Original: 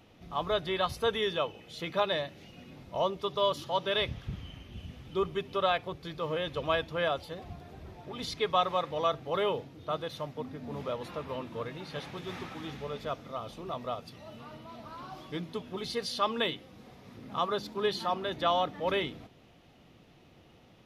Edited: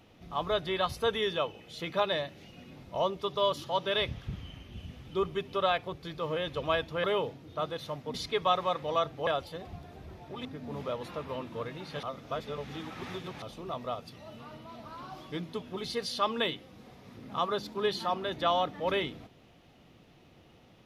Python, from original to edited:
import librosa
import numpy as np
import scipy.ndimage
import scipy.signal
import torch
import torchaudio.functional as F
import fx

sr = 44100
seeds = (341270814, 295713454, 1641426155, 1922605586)

y = fx.edit(x, sr, fx.swap(start_s=7.04, length_s=1.18, other_s=9.35, other_length_s=1.1),
    fx.reverse_span(start_s=12.03, length_s=1.39), tone=tone)